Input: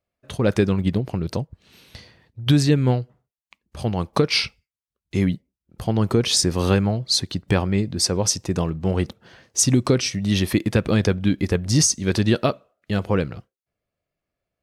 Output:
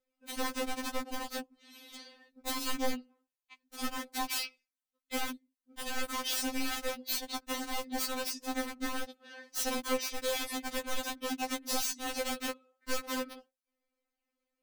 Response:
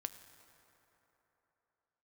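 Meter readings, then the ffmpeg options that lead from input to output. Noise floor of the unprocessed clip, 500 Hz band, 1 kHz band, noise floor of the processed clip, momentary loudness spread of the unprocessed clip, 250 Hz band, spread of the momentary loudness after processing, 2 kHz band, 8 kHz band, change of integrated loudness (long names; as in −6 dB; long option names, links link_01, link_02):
below −85 dBFS, −15.0 dB, −6.0 dB, below −85 dBFS, 11 LU, −18.0 dB, 13 LU, −7.5 dB, −13.5 dB, −14.0 dB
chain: -af "acompressor=threshold=-29dB:ratio=4,aeval=exprs='(mod(17.8*val(0)+1,2)-1)/17.8':channel_layout=same,afftfilt=real='re*3.46*eq(mod(b,12),0)':imag='im*3.46*eq(mod(b,12),0)':win_size=2048:overlap=0.75"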